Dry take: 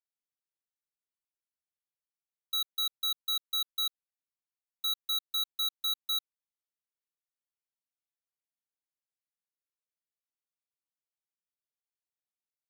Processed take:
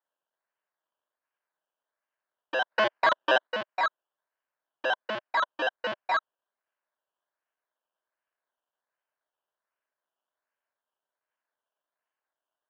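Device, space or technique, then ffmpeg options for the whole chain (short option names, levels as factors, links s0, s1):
circuit-bent sampling toy: -filter_complex "[0:a]asplit=3[s0][s1][s2];[s0]afade=t=out:st=2.7:d=0.02[s3];[s1]highshelf=f=6200:g=11,afade=t=in:st=2.7:d=0.02,afade=t=out:st=3.46:d=0.02[s4];[s2]afade=t=in:st=3.46:d=0.02[s5];[s3][s4][s5]amix=inputs=3:normalize=0,acrusher=samples=16:mix=1:aa=0.000001:lfo=1:lforange=9.6:lforate=1.3,highpass=440,equalizer=f=620:t=q:w=4:g=8,equalizer=f=1000:t=q:w=4:g=7,equalizer=f=1600:t=q:w=4:g=10,equalizer=f=3000:t=q:w=4:g=9,lowpass=f=4300:w=0.5412,lowpass=f=4300:w=1.3066"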